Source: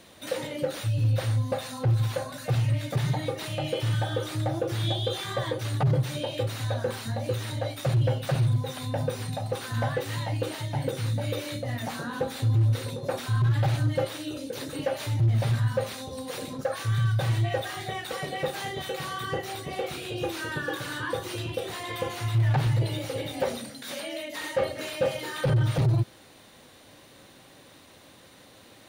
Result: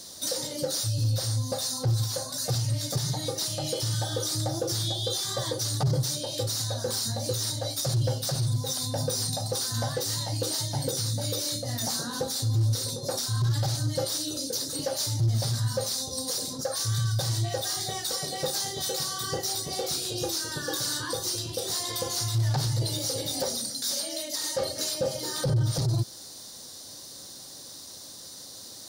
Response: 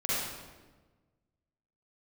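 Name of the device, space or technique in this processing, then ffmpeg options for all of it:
over-bright horn tweeter: -filter_complex "[0:a]asettb=1/sr,asplit=3[link_01][link_02][link_03];[link_01]atrim=end=24.944[link_04];[link_02]atrim=start=24.94:end=25.73,asetpts=PTS-STARTPTS,afade=type=in:duration=0.004:curve=qsin,afade=type=out:start_time=0.786:duration=0.004:curve=qsin,tiltshelf=frequency=970:gain=4[link_05];[link_03]atrim=start=25.726[link_06];[link_04][link_05]acrossfade=duration=0.004:curve1=hsin:curve2=qsin[link_07];[link_07][link_06]acrossfade=duration=0.004:curve1=qsin:curve2=hsin,highshelf=frequency=3600:width_type=q:width=3:gain=12.5,alimiter=limit=-19dB:level=0:latency=1:release=405"

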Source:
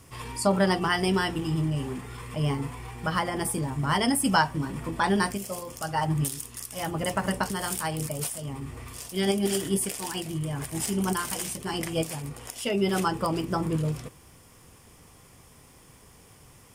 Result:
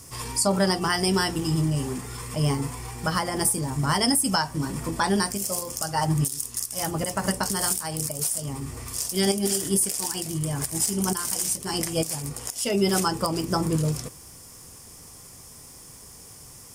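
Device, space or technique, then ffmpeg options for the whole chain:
over-bright horn tweeter: -af "highshelf=frequency=4100:width_type=q:width=1.5:gain=8,alimiter=limit=-14.5dB:level=0:latency=1:release=250,volume=3dB"

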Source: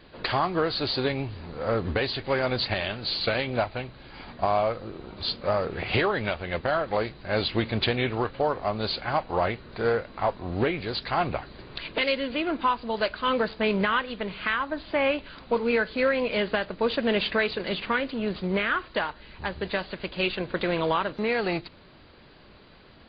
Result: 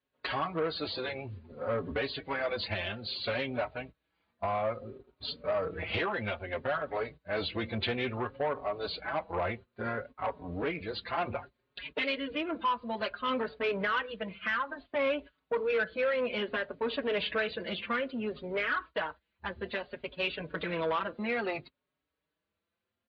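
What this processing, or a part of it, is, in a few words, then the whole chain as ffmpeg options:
barber-pole flanger into a guitar amplifier: -filter_complex "[0:a]agate=range=-15dB:threshold=-38dB:ratio=16:detection=peak,afftdn=noise_reduction=14:noise_floor=-38,asplit=2[link_01][link_02];[link_02]adelay=5.1,afreqshift=0.6[link_03];[link_01][link_03]amix=inputs=2:normalize=1,asoftclip=type=tanh:threshold=-22.5dB,highpass=80,equalizer=frequency=130:width_type=q:width=4:gain=-7,equalizer=frequency=190:width_type=q:width=4:gain=-5,equalizer=frequency=340:width_type=q:width=4:gain=-5,equalizer=frequency=790:width_type=q:width=4:gain=-4,lowpass=frequency=3900:width=0.5412,lowpass=frequency=3900:width=1.3066"

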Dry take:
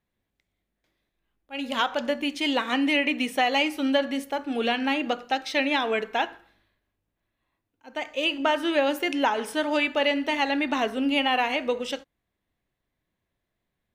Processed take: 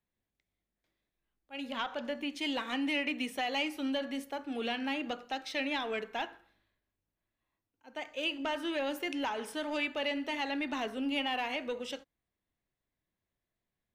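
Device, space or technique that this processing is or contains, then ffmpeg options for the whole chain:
one-band saturation: -filter_complex "[0:a]asettb=1/sr,asplit=3[link_01][link_02][link_03];[link_01]atrim=end=1.644[link_04];[link_02]atrim=start=1.64:end=2.33,asetpts=PTS-STARTPTS,afade=type=in:duration=0.004:curve=qsin,afade=type=out:start_time=0.686:duration=0.004:curve=qsin,acrossover=split=4100[link_05][link_06];[link_06]acompressor=threshold=-52dB:ratio=4:attack=1:release=60[link_07];[link_05][link_07]amix=inputs=2:normalize=0[link_08];[link_03]atrim=start=2.326[link_09];[link_04][link_08]acrossfade=duration=0.004:curve1=hsin:curve2=qsin[link_10];[link_10][link_09]acrossfade=duration=0.004:curve1=qsin:curve2=hsin,acrossover=split=240|2100[link_11][link_12][link_13];[link_12]asoftclip=type=tanh:threshold=-22.5dB[link_14];[link_11][link_14][link_13]amix=inputs=3:normalize=0,volume=-8dB"

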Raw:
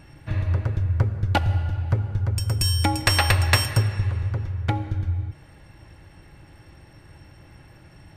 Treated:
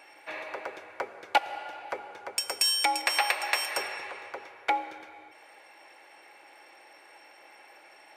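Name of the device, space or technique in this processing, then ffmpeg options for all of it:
laptop speaker: -filter_complex "[0:a]asettb=1/sr,asplit=3[link_01][link_02][link_03];[link_01]atrim=end=2.374[link_04];[link_02]atrim=start=2.37:end=3.02,asetpts=PTS-STARTPTS,afade=type=in:duration=0.004:curve=qsin,afade=type=out:start_time=0.646:duration=0.004:curve=qsin,equalizer=frequency=5000:width_type=o:width=2.3:gain=4[link_05];[link_03]atrim=start=3.016[link_06];[link_04][link_05]acrossfade=duration=0.004:curve1=hsin:curve2=qsin[link_07];[link_07][link_06]acrossfade=duration=0.004:curve1=qsin:curve2=hsin,highpass=frequency=440:width=0.5412,highpass=frequency=440:width=1.3066,equalizer=frequency=800:width_type=o:width=0.38:gain=5.5,equalizer=frequency=2300:width_type=o:width=0.29:gain=8.5,alimiter=limit=-10.5dB:level=0:latency=1:release=306"

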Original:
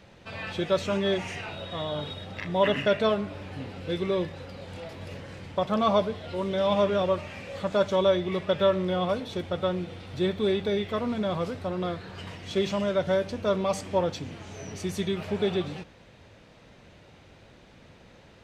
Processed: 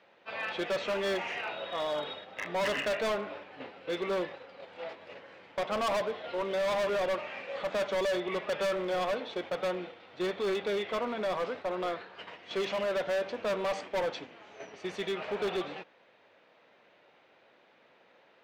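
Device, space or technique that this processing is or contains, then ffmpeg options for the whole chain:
walkie-talkie: -af "highpass=470,lowpass=3000,asoftclip=type=hard:threshold=-30dB,agate=range=-7dB:threshold=-44dB:ratio=16:detection=peak,volume=2.5dB"

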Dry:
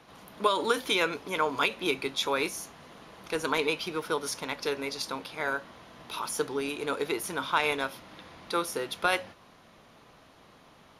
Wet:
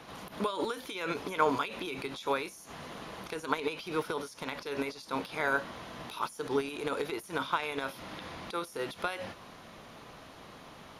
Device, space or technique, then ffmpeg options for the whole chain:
de-esser from a sidechain: -filter_complex "[0:a]asplit=2[link_01][link_02];[link_02]highpass=frequency=4500:width=0.5412,highpass=frequency=4500:width=1.3066,apad=whole_len=484886[link_03];[link_01][link_03]sidechaincompress=threshold=-56dB:ratio=6:attack=3:release=54,volume=6dB"

